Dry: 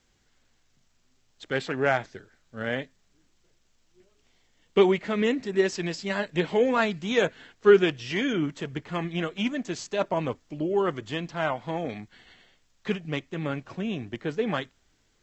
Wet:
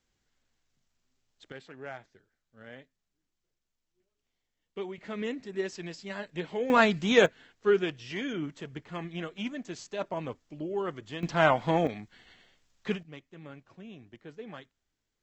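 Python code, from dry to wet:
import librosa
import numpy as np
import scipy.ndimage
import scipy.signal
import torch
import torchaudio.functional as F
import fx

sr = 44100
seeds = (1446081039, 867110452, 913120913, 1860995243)

y = fx.gain(x, sr, db=fx.steps((0.0, -10.0), (1.52, -18.0), (4.98, -9.5), (6.7, 2.5), (7.26, -7.5), (11.23, 5.0), (11.87, -3.0), (13.03, -16.0)))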